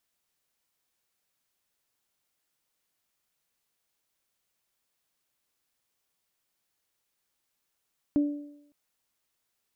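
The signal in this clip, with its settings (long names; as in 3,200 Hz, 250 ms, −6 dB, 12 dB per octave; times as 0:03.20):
harmonic partials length 0.56 s, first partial 291 Hz, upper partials −17 dB, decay 0.75 s, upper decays 0.88 s, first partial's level −18.5 dB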